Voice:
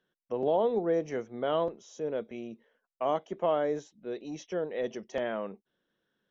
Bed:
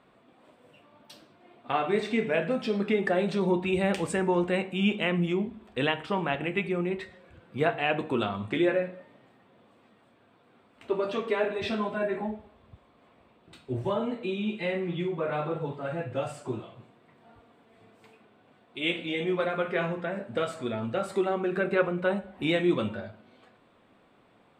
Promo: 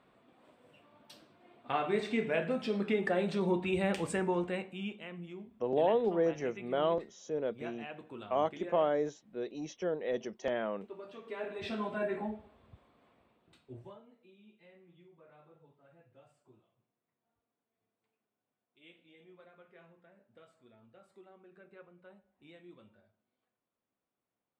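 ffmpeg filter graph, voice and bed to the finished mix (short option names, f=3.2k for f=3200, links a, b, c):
-filter_complex "[0:a]adelay=5300,volume=-1.5dB[a];[1:a]volume=8.5dB,afade=t=out:st=4.17:d=0.82:silence=0.211349,afade=t=in:st=11.21:d=0.75:silence=0.211349,afade=t=out:st=12.77:d=1.25:silence=0.0562341[b];[a][b]amix=inputs=2:normalize=0"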